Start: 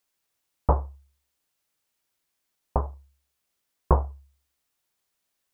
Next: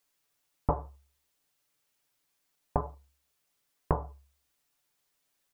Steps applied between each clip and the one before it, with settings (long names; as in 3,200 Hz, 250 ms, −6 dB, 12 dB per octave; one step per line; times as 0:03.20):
comb filter 6.9 ms, depth 55%
downward compressor 6 to 1, threshold −23 dBFS, peak gain reduction 9 dB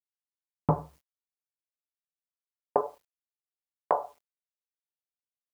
high-pass filter sweep 150 Hz → 630 Hz, 0:01.44–0:03.24
downward expander −56 dBFS
bit reduction 11 bits
level +2 dB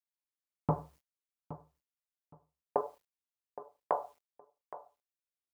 repeating echo 818 ms, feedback 20%, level −15 dB
level −5.5 dB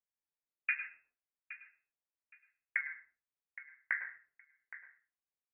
voice inversion scrambler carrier 2,600 Hz
on a send at −8.5 dB: convolution reverb RT60 0.35 s, pre-delay 97 ms
on the sum: level −4 dB